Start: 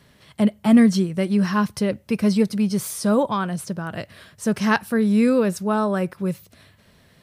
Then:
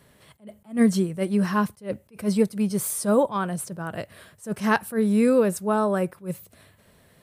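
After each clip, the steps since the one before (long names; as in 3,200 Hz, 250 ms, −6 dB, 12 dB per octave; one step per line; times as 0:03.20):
drawn EQ curve 240 Hz 0 dB, 480 Hz +4 dB, 5,500 Hz −3 dB, 8,200 Hz +6 dB
level that may rise only so fast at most 240 dB per second
level −3 dB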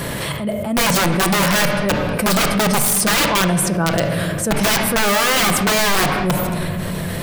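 wrap-around overflow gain 21 dB
convolution reverb RT60 1.2 s, pre-delay 6 ms, DRR 5.5 dB
envelope flattener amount 70%
level +6.5 dB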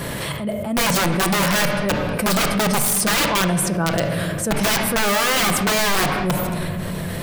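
one half of a high-frequency compander decoder only
level −2.5 dB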